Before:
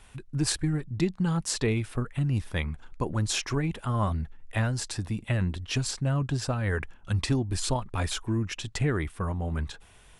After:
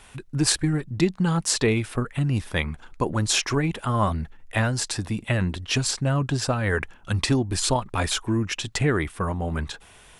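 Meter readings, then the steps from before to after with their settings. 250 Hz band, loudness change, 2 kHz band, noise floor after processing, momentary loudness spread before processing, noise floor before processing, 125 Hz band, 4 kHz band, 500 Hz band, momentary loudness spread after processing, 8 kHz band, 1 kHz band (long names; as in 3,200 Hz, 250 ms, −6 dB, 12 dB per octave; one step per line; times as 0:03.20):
+4.5 dB, +5.0 dB, +7.0 dB, −51 dBFS, 6 LU, −54 dBFS, +2.5 dB, +7.0 dB, +6.5 dB, 7 LU, +7.0 dB, +7.0 dB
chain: low-shelf EQ 140 Hz −8 dB
level +7 dB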